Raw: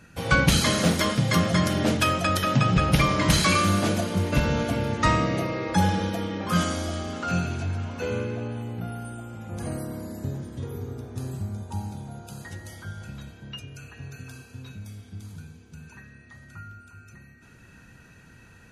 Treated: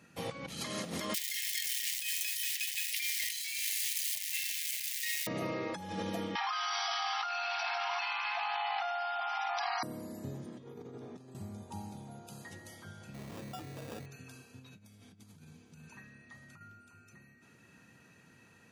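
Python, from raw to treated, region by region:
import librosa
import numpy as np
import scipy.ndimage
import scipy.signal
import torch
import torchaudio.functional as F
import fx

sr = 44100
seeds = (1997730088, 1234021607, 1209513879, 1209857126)

y = fx.chain(x, sr, fx.crossing_spikes(level_db=-16.5),
    fx.steep_highpass(hz=1800.0, slope=96), at=(1.14, 5.27))
y = fx.chain(y, sr, fx.brickwall_bandpass(low_hz=680.0, high_hz=5900.0),
    fx.env_flatten(amount_pct=100), at=(6.35, 9.83))
y = fx.chain(y, sr, fx.highpass(hz=130.0, slope=24),
    fx.air_absorb(metres=70.0),
    fx.over_compress(threshold_db=-39.0, ratio=-0.5), at=(10.46, 11.35))
y = fx.chain(y, sr, fx.sample_hold(seeds[0], rate_hz=2100.0, jitter_pct=0),
    fx.env_flatten(amount_pct=100), at=(13.14, 14.06))
y = fx.chain(y, sr, fx.peak_eq(hz=390.0, db=-3.5, octaves=0.41),
    fx.over_compress(threshold_db=-44.0, ratio=-1.0), at=(14.59, 16.61))
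y = fx.over_compress(y, sr, threshold_db=-27.0, ratio=-1.0)
y = scipy.signal.sosfilt(scipy.signal.butter(2, 160.0, 'highpass', fs=sr, output='sos'), y)
y = fx.notch(y, sr, hz=1500.0, q=8.1)
y = y * librosa.db_to_amplitude(-8.0)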